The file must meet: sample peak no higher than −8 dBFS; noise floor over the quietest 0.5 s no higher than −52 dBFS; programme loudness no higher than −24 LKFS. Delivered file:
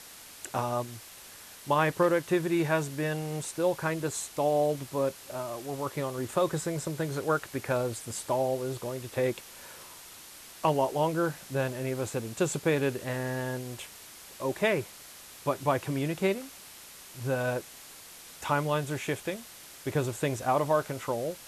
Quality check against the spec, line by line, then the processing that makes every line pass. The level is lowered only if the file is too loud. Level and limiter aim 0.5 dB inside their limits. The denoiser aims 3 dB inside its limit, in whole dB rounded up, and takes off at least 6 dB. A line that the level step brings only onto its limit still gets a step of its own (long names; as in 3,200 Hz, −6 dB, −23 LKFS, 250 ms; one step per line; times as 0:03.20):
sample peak −13.0 dBFS: in spec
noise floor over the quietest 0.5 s −49 dBFS: out of spec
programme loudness −30.5 LKFS: in spec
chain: broadband denoise 6 dB, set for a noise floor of −49 dBFS